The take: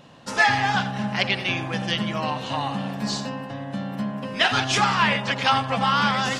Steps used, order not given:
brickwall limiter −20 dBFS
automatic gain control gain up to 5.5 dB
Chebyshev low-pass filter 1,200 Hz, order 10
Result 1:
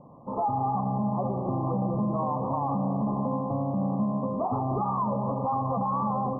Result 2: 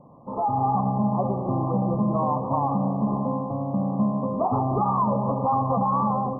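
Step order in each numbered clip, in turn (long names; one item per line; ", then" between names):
automatic gain control, then Chebyshev low-pass filter, then brickwall limiter
Chebyshev low-pass filter, then brickwall limiter, then automatic gain control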